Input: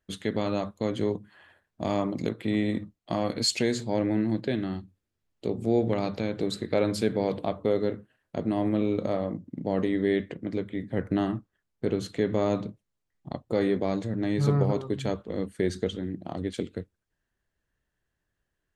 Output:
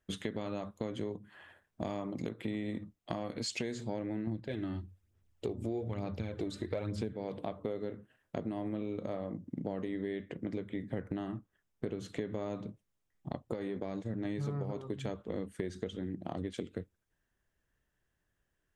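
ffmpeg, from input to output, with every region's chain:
-filter_complex "[0:a]asettb=1/sr,asplit=3[s0][s1][s2];[s0]atrim=end=4.274[s3];[s1]atrim=start=4.27:end=7.14,asetpts=PTS-STARTPTS,afade=t=in:d=0.004:c=qsin,afade=t=out:st=2.866:d=0.004:c=qsin,equalizer=f=79:t=o:w=0.69:g=14,aphaser=in_gain=1:out_gain=1:delay=3.4:decay=0.49:speed=1.1:type=sinusoidal[s4];[s2]atrim=start=7.136[s5];[s3][s4]acrossfade=d=0.004:c1=hsin:c2=qsin[s6];[s6][s5]acrossfade=d=0.004:c1=qsin:c2=hsin,asettb=1/sr,asplit=3[s7][s8][s9];[s7]atrim=end=13.544[s10];[s8]atrim=start=13.54:end=14.25,asetpts=PTS-STARTPTS,afade=t=in:d=0.004:c=qsin,afade=t=out:st=0.706:d=0.004:c=qsin,agate=range=0.0224:threshold=0.0398:ratio=3:release=100:detection=peak,acompressor=threshold=0.0447:ratio=5:attack=3.2:release=140:knee=1:detection=peak[s11];[s9]atrim=start=14.246[s12];[s10][s11]acrossfade=d=0.004:c1=hsin:c2=qsin[s13];[s13][s12]acrossfade=d=0.004:c1=qsin:c2=hsin,acrossover=split=7800[s14][s15];[s15]acompressor=threshold=0.00178:ratio=4:attack=1:release=60[s16];[s14][s16]amix=inputs=2:normalize=0,equalizer=f=4300:t=o:w=0.21:g=-6.5,acompressor=threshold=0.0224:ratio=10"

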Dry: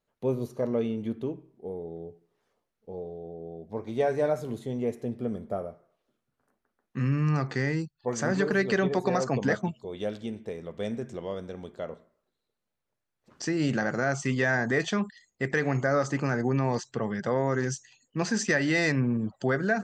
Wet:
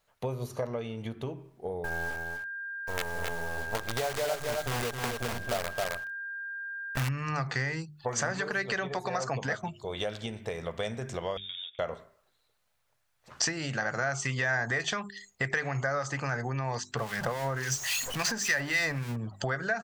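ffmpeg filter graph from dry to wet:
-filter_complex "[0:a]asettb=1/sr,asplit=3[s0][s1][s2];[s0]atrim=end=1.844[s3];[s1]atrim=start=1.84:end=7.09,asetpts=PTS-STARTPTS,afade=t=in:d=0.004:c=qsin,afade=t=out:st=5.246:d=0.004:c=qsin,acrusher=bits=6:dc=4:mix=0:aa=0.000001,aeval=exprs='val(0)+0.00708*sin(2*PI*1600*n/s)':c=same,aecho=1:1:266:0.501,atrim=end_sample=231525[s4];[s2]atrim=start=7.086[s5];[s3][s4]acrossfade=d=0.004:c1=hsin:c2=qsin[s6];[s6][s5]acrossfade=d=0.004:c1=qsin:c2=hsin,asettb=1/sr,asplit=3[s7][s8][s9];[s7]atrim=end=11.374[s10];[s8]atrim=start=11.37:end=11.79,asetpts=PTS-STARTPTS,afade=t=in:d=0.004:c=qsin,afade=t=out:st=0.416:d=0.004:c=qsin,agate=range=0.224:threshold=0.00631:ratio=16:release=100:detection=peak,acompressor=threshold=0.00355:ratio=5:attack=3.2:release=140:knee=1:detection=peak,lowpass=f=3200:t=q:w=0.5098,lowpass=f=3200:t=q:w=0.6013,lowpass=f=3200:t=q:w=0.9,lowpass=f=3200:t=q:w=2.563,afreqshift=-3800[s11];[s9]atrim=start=11.786[s12];[s10][s11]acrossfade=d=0.004:c1=hsin:c2=qsin[s13];[s13][s12]acrossfade=d=0.004:c1=qsin:c2=hsin,asettb=1/sr,asplit=3[s14][s15][s16];[s14]atrim=end=16.974[s17];[s15]atrim=start=16.97:end=19.16,asetpts=PTS-STARTPTS,afade=t=in:d=0.004:c=qsin,afade=t=out:st=2.186:d=0.004:c=qsin,aeval=exprs='val(0)+0.5*0.0178*sgn(val(0))':c=same,acrossover=split=1400[s18][s19];[s18]aeval=exprs='val(0)*(1-0.7/2+0.7/2*cos(2*PI*3.6*n/s))':c=same[s20];[s19]aeval=exprs='val(0)*(1-0.7/2-0.7/2*cos(2*PI*3.6*n/s))':c=same[s21];[s20][s21]amix=inputs=2:normalize=0[s22];[s16]atrim=start=19.156[s23];[s17][s22]acrossfade=d=0.004:c1=hsin:c2=qsin[s24];[s24][s23]acrossfade=d=0.004:c1=qsin:c2=hsin,bandreject=f=50:t=h:w=6,bandreject=f=100:t=h:w=6,bandreject=f=150:t=h:w=6,bandreject=f=200:t=h:w=6,bandreject=f=250:t=h:w=6,bandreject=f=300:t=h:w=6,bandreject=f=350:t=h:w=6,bandreject=f=400:t=h:w=6,acompressor=threshold=0.0178:ratio=10,firequalizer=gain_entry='entry(130,0);entry(190,-9);entry(290,-10);entry(670,1);entry(1400,3)':delay=0.05:min_phase=1,volume=2.82"

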